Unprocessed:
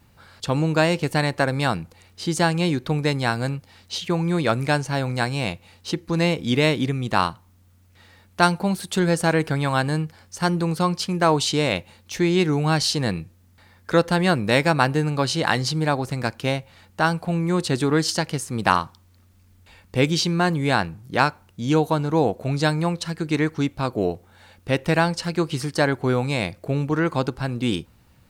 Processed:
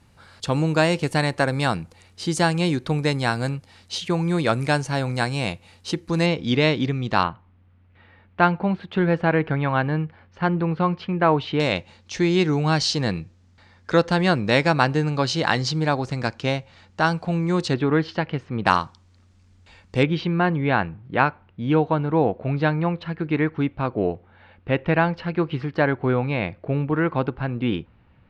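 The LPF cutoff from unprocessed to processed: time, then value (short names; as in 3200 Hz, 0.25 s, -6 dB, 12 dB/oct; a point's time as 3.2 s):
LPF 24 dB/oct
11000 Hz
from 6.26 s 5600 Hz
from 7.23 s 2800 Hz
from 11.6 s 6800 Hz
from 17.74 s 3000 Hz
from 18.66 s 7500 Hz
from 20.03 s 2900 Hz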